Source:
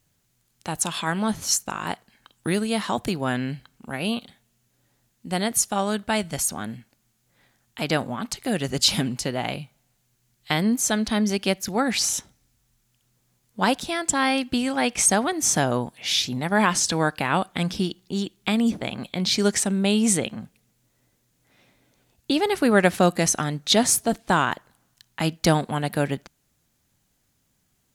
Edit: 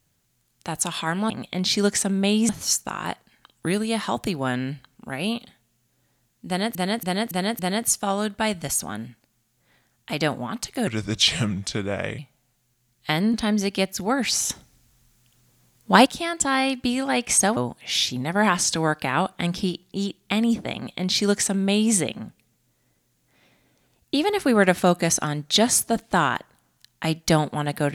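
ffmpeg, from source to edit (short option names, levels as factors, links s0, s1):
-filter_complex "[0:a]asplit=13[s0][s1][s2][s3][s4][s5][s6][s7][s8][s9][s10][s11][s12];[s0]atrim=end=1.302[s13];[s1]atrim=start=18.908:end=20.102[s14];[s2]atrim=start=1.298:end=5.562[s15];[s3]atrim=start=5.278:end=5.562[s16];[s4]atrim=start=5.278:end=5.562[s17];[s5]atrim=start=5.278:end=5.562[s18];[s6]atrim=start=5.278:end=8.564[s19];[s7]atrim=start=8.56:end=9.6,asetpts=PTS-STARTPTS,asetrate=34839,aresample=44100[s20];[s8]atrim=start=9.596:end=10.752[s21];[s9]atrim=start=11.018:end=12.182[s22];[s10]atrim=start=12.178:end=13.742,asetpts=PTS-STARTPTS,volume=2.24[s23];[s11]atrim=start=13.738:end=15.252[s24];[s12]atrim=start=15.728[s25];[s13][s14]acrossfade=d=0.004:c1=hsin:c2=hsin[s26];[s26][s15]acrossfade=d=0.004:c1=hsin:c2=hsin[s27];[s27][s16]acrossfade=d=0.004:c1=hsin:c2=hsin[s28];[s28][s17]acrossfade=d=0.004:c1=hsin:c2=hsin[s29];[s29][s18]acrossfade=d=0.004:c1=hsin:c2=hsin[s30];[s30][s19]acrossfade=d=0.004:c1=hsin:c2=hsin[s31];[s31][s20]acrossfade=d=0.004:c1=hsin:c2=hsin[s32];[s32][s21]acrossfade=d=0.004:c1=hsin:c2=hsin[s33];[s33][s22]acrossfade=d=0.004:c1=hsin:c2=hsin[s34];[s34][s23]acrossfade=d=0.004:c1=hsin:c2=hsin[s35];[s35][s24]acrossfade=d=0.004:c1=hsin:c2=hsin[s36];[s36][s25]acrossfade=d=0.004:c1=hsin:c2=hsin"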